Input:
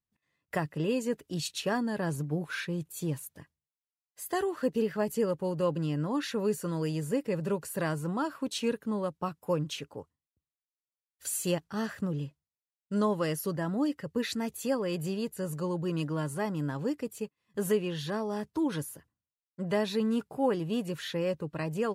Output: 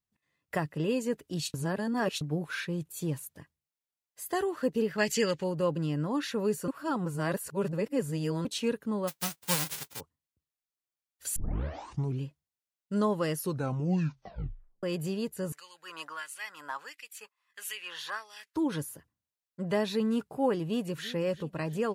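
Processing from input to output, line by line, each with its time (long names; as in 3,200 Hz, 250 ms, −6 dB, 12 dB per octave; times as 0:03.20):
0:01.54–0:02.21: reverse
0:04.98–0:05.44: flat-topped bell 3,500 Hz +15.5 dB 2.5 octaves
0:06.68–0:08.45: reverse
0:09.07–0:09.99: spectral envelope flattened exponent 0.1
0:11.36: tape start 0.90 s
0:13.38: tape stop 1.45 s
0:15.52–0:18.56: auto-filter high-pass sine 1.5 Hz 960–2,600 Hz
0:20.63–0:21.08: delay throw 340 ms, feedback 55%, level −16.5 dB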